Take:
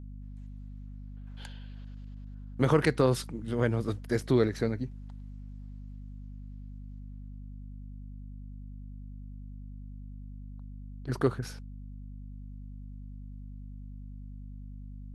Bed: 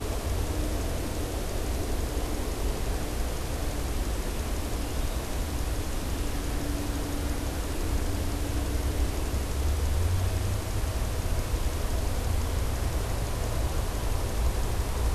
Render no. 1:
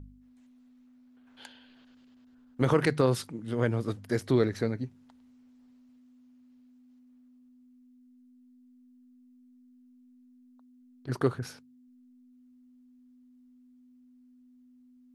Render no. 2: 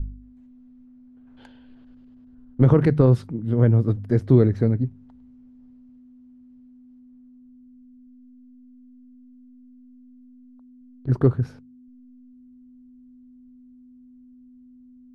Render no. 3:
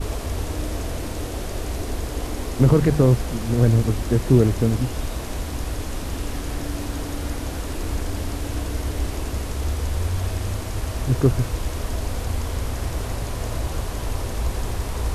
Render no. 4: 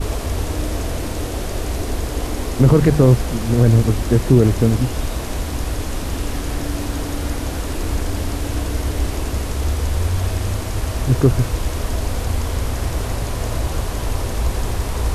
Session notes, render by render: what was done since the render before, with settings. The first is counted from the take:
de-hum 50 Hz, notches 4
tilt EQ -4.5 dB/octave
add bed +2.5 dB
trim +4.5 dB; peak limiter -2 dBFS, peak gain reduction 3 dB

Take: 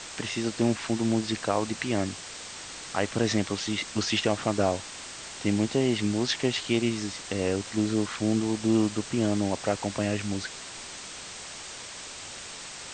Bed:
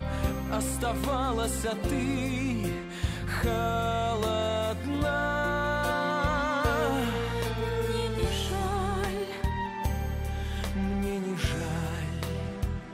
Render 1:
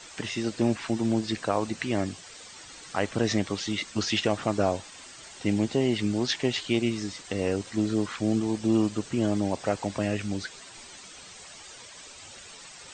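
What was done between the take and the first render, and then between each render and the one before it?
noise reduction 10 dB, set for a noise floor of -41 dBFS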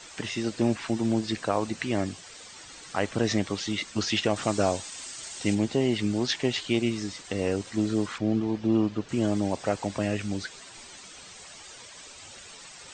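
4.36–5.55 s: treble shelf 4.2 kHz +11 dB; 8.18–9.09 s: distance through air 180 m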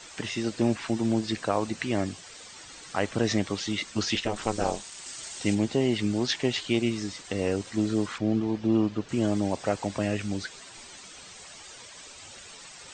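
4.15–5.06 s: ring modulator 110 Hz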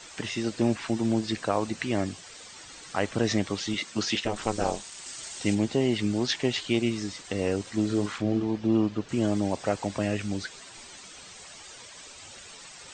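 3.74–4.24 s: high-pass 120 Hz; 7.86–8.43 s: doubling 39 ms -8 dB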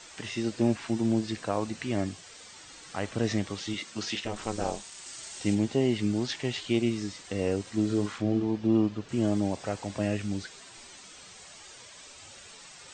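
harmonic-percussive split percussive -7 dB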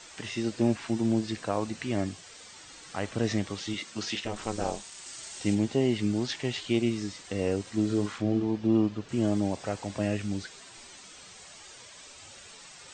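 no audible change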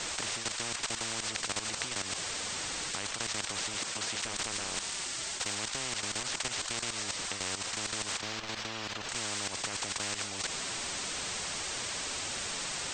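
level held to a coarse grid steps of 14 dB; spectrum-flattening compressor 10:1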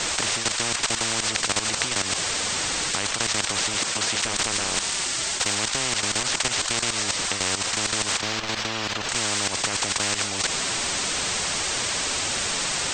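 trim +10.5 dB

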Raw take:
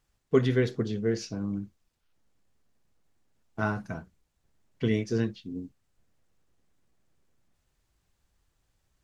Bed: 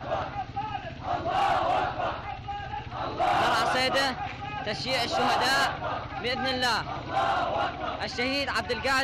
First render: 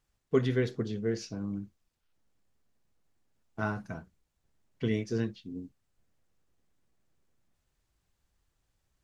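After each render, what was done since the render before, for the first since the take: trim -3.5 dB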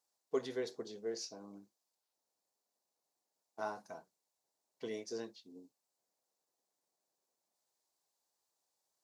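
high-pass 630 Hz 12 dB/octave; high-order bell 2 kHz -11.5 dB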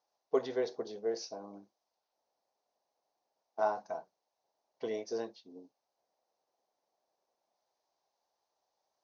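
steep low-pass 6.4 kHz 96 dB/octave; peaking EQ 700 Hz +11 dB 1.4 oct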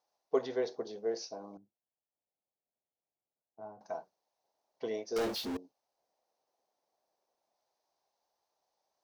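1.57–3.81 s: band-pass filter 110 Hz, Q 1.1; 5.16–5.57 s: power-law waveshaper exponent 0.35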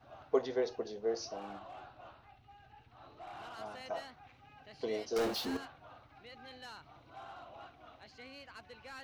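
add bed -24 dB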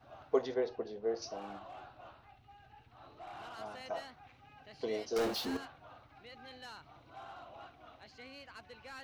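0.54–1.22 s: distance through air 190 m

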